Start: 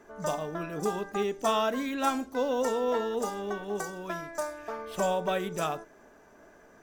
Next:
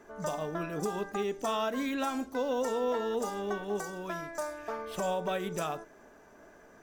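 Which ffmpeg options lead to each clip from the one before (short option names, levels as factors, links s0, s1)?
-af "alimiter=limit=0.0708:level=0:latency=1:release=137"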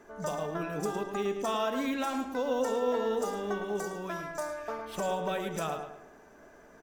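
-filter_complex "[0:a]asplit=2[s0][s1];[s1]adelay=109,lowpass=f=3800:p=1,volume=0.447,asplit=2[s2][s3];[s3]adelay=109,lowpass=f=3800:p=1,volume=0.39,asplit=2[s4][s5];[s5]adelay=109,lowpass=f=3800:p=1,volume=0.39,asplit=2[s6][s7];[s7]adelay=109,lowpass=f=3800:p=1,volume=0.39,asplit=2[s8][s9];[s9]adelay=109,lowpass=f=3800:p=1,volume=0.39[s10];[s0][s2][s4][s6][s8][s10]amix=inputs=6:normalize=0"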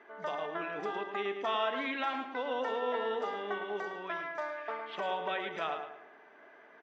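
-af "highpass=420,equalizer=f=530:t=q:w=4:g=-5,equalizer=f=2000:t=q:w=4:g=7,equalizer=f=3200:t=q:w=4:g=4,lowpass=f=3600:w=0.5412,lowpass=f=3600:w=1.3066"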